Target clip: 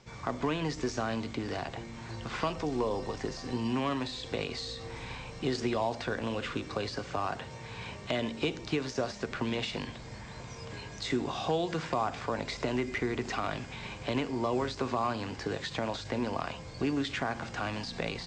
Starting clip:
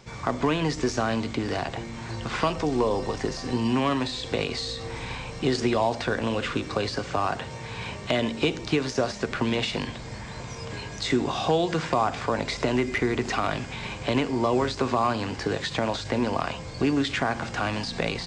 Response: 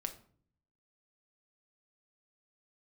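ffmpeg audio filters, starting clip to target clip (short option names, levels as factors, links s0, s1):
-af "lowpass=f=8600:w=0.5412,lowpass=f=8600:w=1.3066,volume=0.447"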